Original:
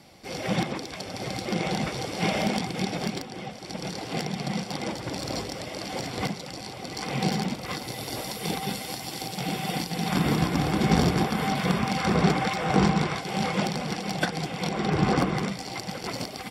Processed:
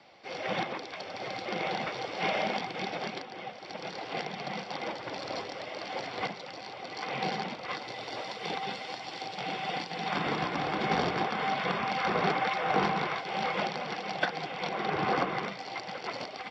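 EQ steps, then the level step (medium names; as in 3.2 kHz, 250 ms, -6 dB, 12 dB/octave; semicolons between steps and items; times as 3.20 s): high-pass 87 Hz; distance through air 100 m; three-band isolator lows -14 dB, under 430 Hz, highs -23 dB, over 5.5 kHz; 0.0 dB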